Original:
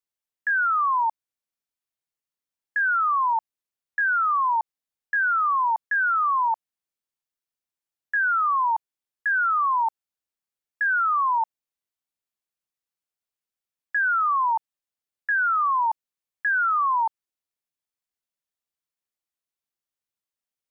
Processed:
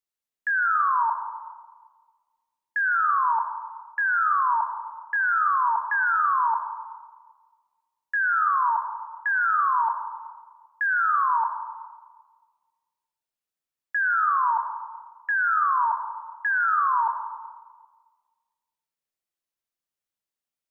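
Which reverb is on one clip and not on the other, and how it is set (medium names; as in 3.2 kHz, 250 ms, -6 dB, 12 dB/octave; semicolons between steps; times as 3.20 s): algorithmic reverb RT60 1.6 s, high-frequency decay 0.35×, pre-delay 20 ms, DRR 4.5 dB; trim -1.5 dB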